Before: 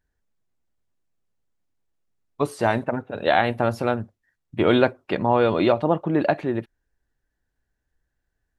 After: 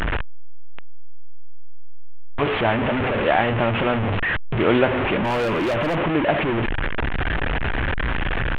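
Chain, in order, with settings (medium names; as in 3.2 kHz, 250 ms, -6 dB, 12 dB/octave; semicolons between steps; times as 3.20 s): one-bit delta coder 16 kbps, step -15.5 dBFS; 5.18–5.97 s: hard clipper -19 dBFS, distortion -15 dB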